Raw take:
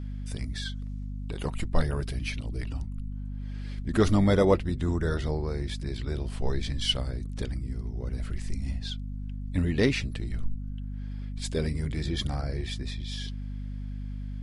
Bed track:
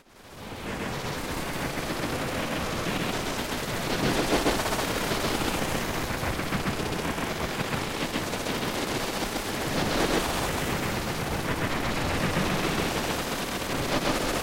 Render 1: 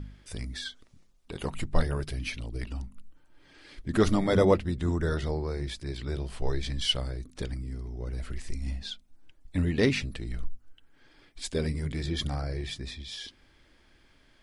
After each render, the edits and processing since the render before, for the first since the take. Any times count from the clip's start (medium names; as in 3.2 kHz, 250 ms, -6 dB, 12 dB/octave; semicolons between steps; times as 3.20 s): de-hum 50 Hz, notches 5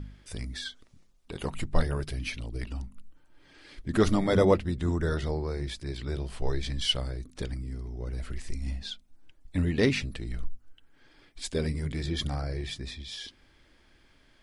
no audible change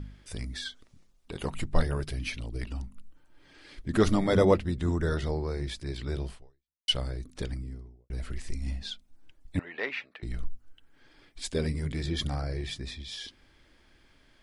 6.30–6.88 s: fade out exponential; 7.49–8.10 s: studio fade out; 9.59–10.23 s: Butterworth band-pass 1.3 kHz, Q 0.71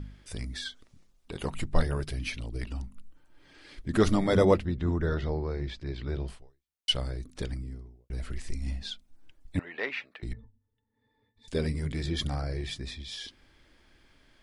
4.65–6.28 s: distance through air 160 m; 10.33–11.48 s: pitch-class resonator A, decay 0.1 s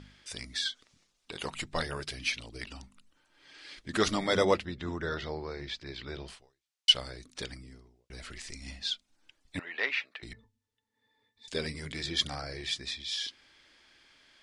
low-pass 5.9 kHz 12 dB/octave; tilt EQ +3.5 dB/octave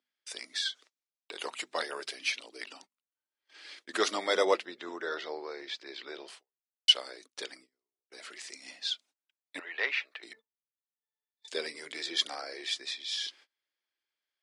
high-pass 350 Hz 24 dB/octave; gate -54 dBFS, range -29 dB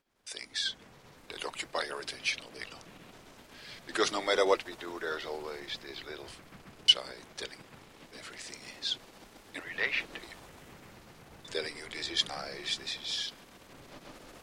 add bed track -24 dB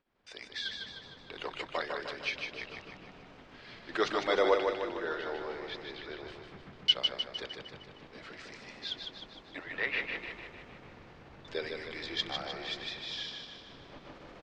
distance through air 200 m; on a send: feedback delay 153 ms, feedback 54%, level -5 dB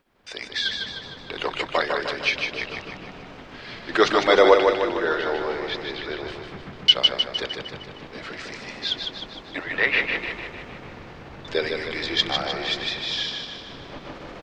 trim +12 dB; peak limiter -3 dBFS, peak gain reduction 3 dB